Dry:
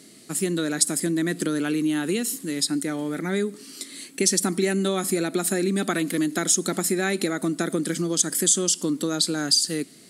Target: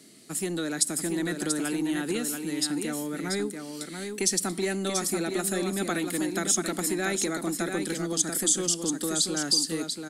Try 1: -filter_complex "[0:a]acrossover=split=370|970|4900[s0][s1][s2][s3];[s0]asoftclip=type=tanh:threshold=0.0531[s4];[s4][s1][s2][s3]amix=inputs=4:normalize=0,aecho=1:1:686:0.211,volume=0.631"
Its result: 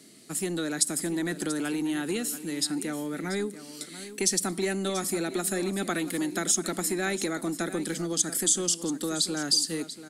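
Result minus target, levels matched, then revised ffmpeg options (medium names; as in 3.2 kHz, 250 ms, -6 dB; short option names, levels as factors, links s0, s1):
echo-to-direct -7.5 dB
-filter_complex "[0:a]acrossover=split=370|970|4900[s0][s1][s2][s3];[s0]asoftclip=type=tanh:threshold=0.0531[s4];[s4][s1][s2][s3]amix=inputs=4:normalize=0,aecho=1:1:686:0.501,volume=0.631"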